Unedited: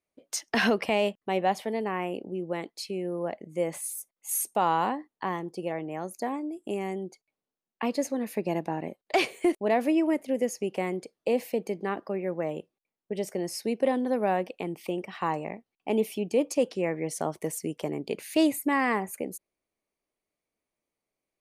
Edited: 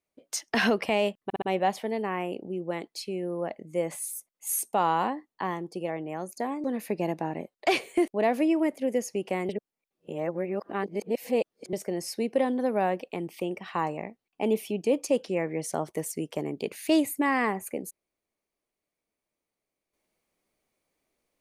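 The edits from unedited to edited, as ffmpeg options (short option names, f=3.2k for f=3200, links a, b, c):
-filter_complex "[0:a]asplit=7[a][b][c][d][e][f][g];[a]atrim=end=1.302[h];[b]atrim=start=1.238:end=1.302[i];[c]atrim=start=1.238:end=1.302[j];[d]atrim=start=1.238:end=6.462[k];[e]atrim=start=8.108:end=10.962[l];[f]atrim=start=10.958:end=13.202,asetpts=PTS-STARTPTS,areverse[m];[g]atrim=start=13.198[n];[h][i]acrossfade=d=0.004:c1=hsin:c2=hsin[o];[o][j]acrossfade=d=0.004:c1=hsin:c2=hsin[p];[p][k]acrossfade=d=0.004:c1=hsin:c2=hsin[q];[q][l]acrossfade=d=0.004:c1=hsin:c2=hsin[r];[r][m]acrossfade=d=0.004:c1=hsin:c2=hsin[s];[s][n]acrossfade=d=0.004:c1=hsin:c2=hsin"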